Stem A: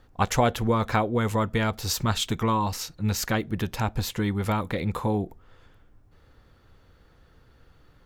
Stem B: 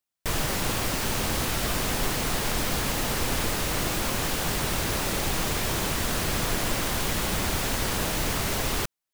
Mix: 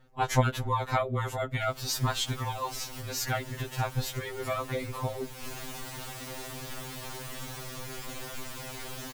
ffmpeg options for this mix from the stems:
ffmpeg -i stem1.wav -i stem2.wav -filter_complex "[0:a]volume=-1dB,asplit=2[link_01][link_02];[1:a]asoftclip=type=tanh:threshold=-26.5dB,adelay=1350,volume=-7.5dB,asplit=2[link_03][link_04];[link_04]volume=-6.5dB[link_05];[link_02]apad=whole_len=462245[link_06];[link_03][link_06]sidechaincompress=threshold=-38dB:ratio=8:attack=16:release=237[link_07];[link_05]aecho=0:1:332:1[link_08];[link_01][link_07][link_08]amix=inputs=3:normalize=0,afftfilt=real='re*2.45*eq(mod(b,6),0)':imag='im*2.45*eq(mod(b,6),0)':win_size=2048:overlap=0.75" out.wav

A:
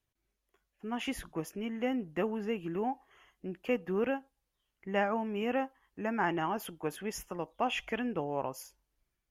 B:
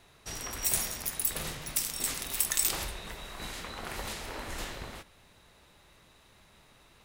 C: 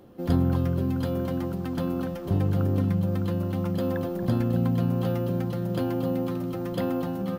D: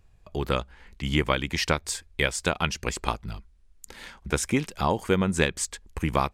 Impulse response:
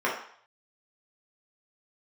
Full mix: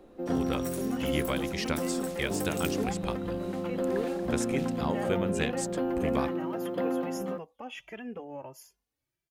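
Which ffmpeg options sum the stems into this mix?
-filter_complex "[0:a]highpass=78,alimiter=level_in=2.5dB:limit=-24dB:level=0:latency=1:release=417,volume=-2.5dB,asplit=2[link_01][link_02];[link_02]adelay=2.5,afreqshift=1.5[link_03];[link_01][link_03]amix=inputs=2:normalize=1,volume=1dB[link_04];[1:a]volume=-13.5dB[link_05];[2:a]acrossover=split=230 2500:gain=0.0708 1 0.158[link_06][link_07][link_08];[link_06][link_07][link_08]amix=inputs=3:normalize=0,volume=0.5dB[link_09];[3:a]volume=-7.5dB[link_10];[link_04][link_05][link_09][link_10]amix=inputs=4:normalize=0,equalizer=frequency=1100:width=1.5:gain=-3"

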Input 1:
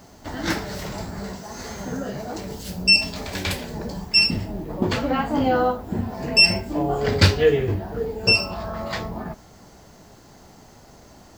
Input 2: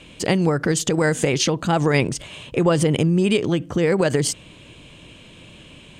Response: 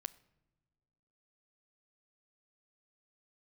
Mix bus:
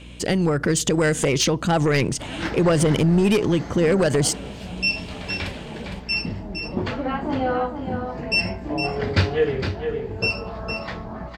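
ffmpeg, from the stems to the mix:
-filter_complex "[0:a]lowpass=2600,aemphasis=mode=production:type=50fm,adelay=1950,volume=-3dB,asplit=2[link_01][link_02];[link_02]volume=-7.5dB[link_03];[1:a]dynaudnorm=framelen=240:gausssize=5:maxgain=5dB,aeval=exprs='0.75*sin(PI/2*1.78*val(0)/0.75)':channel_layout=same,volume=-11.5dB,asplit=2[link_04][link_05];[link_05]volume=-9.5dB[link_06];[2:a]atrim=start_sample=2205[link_07];[link_06][link_07]afir=irnorm=-1:irlink=0[link_08];[link_03]aecho=0:1:460:1[link_09];[link_01][link_04][link_08][link_09]amix=inputs=4:normalize=0,aeval=exprs='val(0)+0.00891*(sin(2*PI*60*n/s)+sin(2*PI*2*60*n/s)/2+sin(2*PI*3*60*n/s)/3+sin(2*PI*4*60*n/s)/4+sin(2*PI*5*60*n/s)/5)':channel_layout=same"

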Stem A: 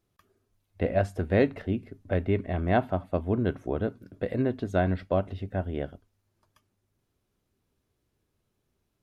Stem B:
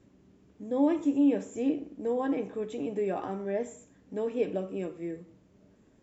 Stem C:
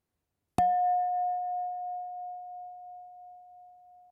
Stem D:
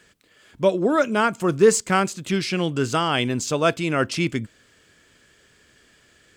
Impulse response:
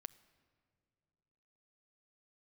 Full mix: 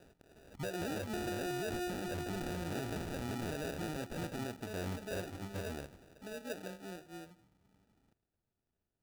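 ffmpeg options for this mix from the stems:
-filter_complex "[0:a]volume=-11.5dB[link_01];[1:a]lowshelf=frequency=180:gain=9.5,adelay=2100,volume=-15dB[link_02];[2:a]lowpass=1000,adelay=550,volume=-6dB[link_03];[3:a]acompressor=threshold=-35dB:ratio=2,volume=-4dB,asplit=2[link_04][link_05];[link_05]apad=whole_len=358465[link_06];[link_02][link_06]sidechaincompress=threshold=-43dB:ratio=8:attack=16:release=390[link_07];[link_01][link_07][link_03][link_04]amix=inputs=4:normalize=0,acrusher=samples=41:mix=1:aa=0.000001,alimiter=level_in=9dB:limit=-24dB:level=0:latency=1:release=27,volume=-9dB"

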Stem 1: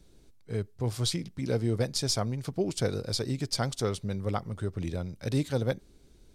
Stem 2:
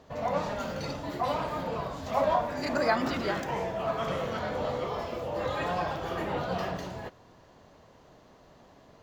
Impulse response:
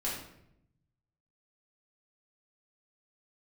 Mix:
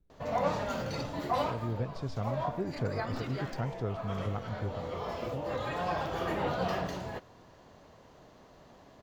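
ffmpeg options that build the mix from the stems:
-filter_complex "[0:a]lowpass=2000,lowshelf=frequency=180:gain=8,volume=-8dB,afade=type=in:start_time=1.36:duration=0.54:silence=0.281838,afade=type=out:start_time=4.66:duration=0.22:silence=0.298538,asplit=2[link_01][link_02];[1:a]adelay=100,volume=0dB[link_03];[link_02]apad=whole_len=402436[link_04];[link_03][link_04]sidechaincompress=threshold=-39dB:ratio=8:attack=5.5:release=862[link_05];[link_01][link_05]amix=inputs=2:normalize=0"

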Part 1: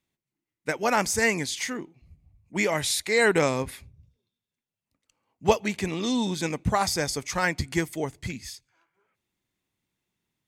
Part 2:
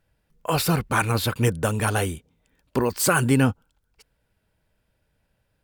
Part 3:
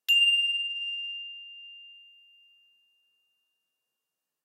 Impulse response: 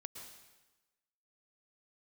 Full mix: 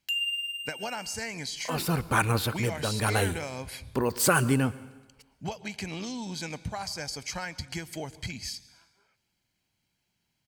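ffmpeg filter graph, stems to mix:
-filter_complex "[0:a]equalizer=frequency=4000:width_type=o:width=1:gain=8.5,aecho=1:1:1.3:0.39,acompressor=threshold=-31dB:ratio=10,volume=0.5dB,asplit=2[link_01][link_02];[link_02]volume=-11dB[link_03];[1:a]tremolo=f=0.98:d=0.54,adelay=1200,volume=-4dB,asplit=2[link_04][link_05];[link_05]volume=-7dB[link_06];[2:a]aeval=exprs='sgn(val(0))*max(abs(val(0))-0.00944,0)':channel_layout=same,volume=-2.5dB,asplit=2[link_07][link_08];[link_08]volume=-16.5dB[link_09];[link_01][link_07]amix=inputs=2:normalize=0,asuperstop=centerf=3600:order=4:qfactor=7.9,acompressor=threshold=-38dB:ratio=1.5,volume=0dB[link_10];[3:a]atrim=start_sample=2205[link_11];[link_03][link_06][link_09]amix=inputs=3:normalize=0[link_12];[link_12][link_11]afir=irnorm=-1:irlink=0[link_13];[link_04][link_10][link_13]amix=inputs=3:normalize=0"

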